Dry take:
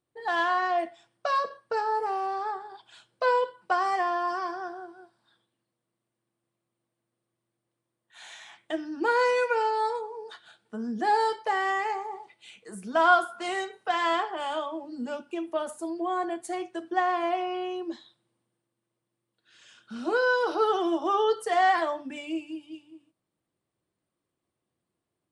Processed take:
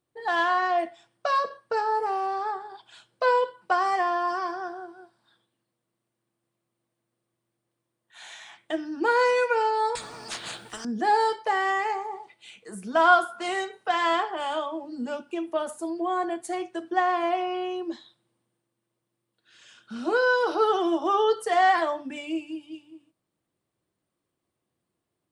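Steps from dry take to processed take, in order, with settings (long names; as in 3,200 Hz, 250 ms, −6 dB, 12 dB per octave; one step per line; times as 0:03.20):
0:09.95–0:10.85: every bin compressed towards the loudest bin 10 to 1
level +2 dB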